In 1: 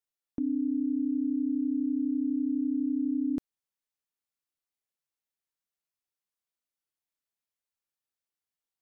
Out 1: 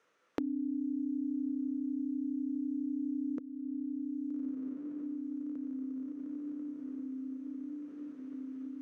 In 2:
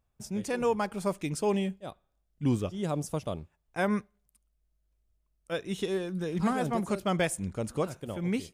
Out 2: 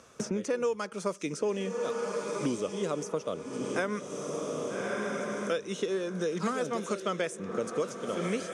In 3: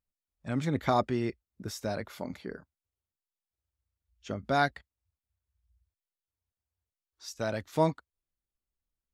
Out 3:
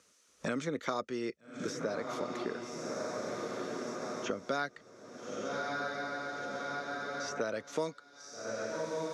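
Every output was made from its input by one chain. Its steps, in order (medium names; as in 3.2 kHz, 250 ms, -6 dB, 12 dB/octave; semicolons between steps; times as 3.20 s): cabinet simulation 240–9900 Hz, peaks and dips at 480 Hz +7 dB, 790 Hz -8 dB, 1.3 kHz +6 dB, 6.1 kHz +10 dB; echo that smears into a reverb 1250 ms, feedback 41%, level -10 dB; three bands compressed up and down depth 100%; trim -2.5 dB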